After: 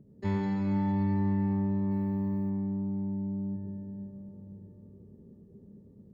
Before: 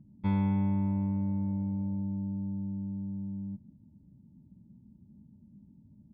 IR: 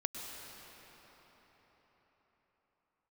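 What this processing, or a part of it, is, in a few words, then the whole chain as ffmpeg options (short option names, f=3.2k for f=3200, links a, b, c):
shimmer-style reverb: -filter_complex "[0:a]asplit=2[a][b];[b]asetrate=88200,aresample=44100,atempo=0.5,volume=-9dB[c];[a][c]amix=inputs=2:normalize=0[d];[1:a]atrim=start_sample=2205[e];[d][e]afir=irnorm=-1:irlink=0,asettb=1/sr,asplit=3[f][g][h];[f]atrim=end=1.914[i];[g]atrim=start=1.91:end=2.5,asetpts=PTS-STARTPTS,afade=t=in:d=0.004:c=qsin,afade=t=out:st=0.586:d=0.004:c=qsin,aemphasis=mode=production:type=75kf[j];[h]atrim=start=2.496[k];[i][j]acrossfade=d=0.004:c1=hsin:c2=qsin[l];[l][k]acrossfade=d=0.004:c1=qsin:c2=hsin"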